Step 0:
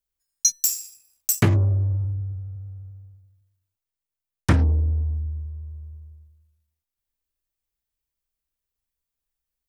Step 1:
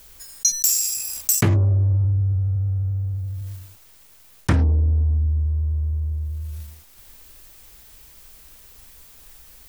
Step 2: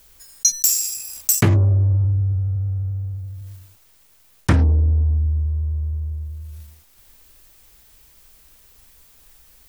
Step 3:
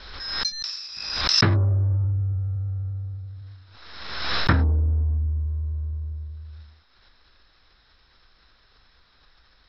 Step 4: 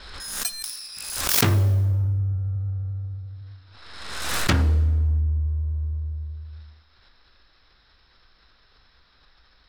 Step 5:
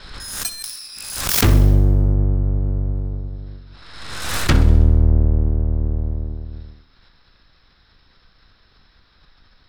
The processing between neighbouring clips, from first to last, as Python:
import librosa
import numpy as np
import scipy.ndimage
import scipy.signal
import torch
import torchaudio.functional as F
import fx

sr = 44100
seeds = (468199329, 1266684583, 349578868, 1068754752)

y1 = fx.env_flatten(x, sr, amount_pct=70)
y1 = y1 * 10.0 ** (-2.0 / 20.0)
y2 = fx.upward_expand(y1, sr, threshold_db=-29.0, expansion=1.5)
y2 = y2 * 10.0 ** (3.5 / 20.0)
y3 = scipy.signal.sosfilt(scipy.signal.cheby1(6, 9, 5400.0, 'lowpass', fs=sr, output='sos'), y2)
y3 = fx.pre_swell(y3, sr, db_per_s=44.0)
y3 = y3 * 10.0 ** (4.0 / 20.0)
y4 = fx.self_delay(y3, sr, depth_ms=0.6)
y4 = fx.rev_plate(y4, sr, seeds[0], rt60_s=1.4, hf_ratio=0.8, predelay_ms=0, drr_db=14.0)
y5 = fx.octave_divider(y4, sr, octaves=1, level_db=4.0)
y5 = fx.echo_feedback(y5, sr, ms=64, feedback_pct=56, wet_db=-15.5)
y5 = y5 * 10.0 ** (2.0 / 20.0)